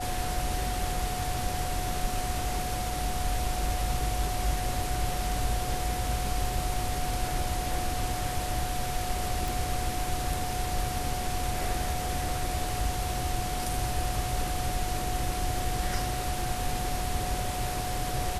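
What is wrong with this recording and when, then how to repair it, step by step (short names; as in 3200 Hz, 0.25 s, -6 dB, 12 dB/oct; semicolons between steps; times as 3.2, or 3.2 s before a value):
tone 730 Hz -34 dBFS
9.48 pop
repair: de-click; notch 730 Hz, Q 30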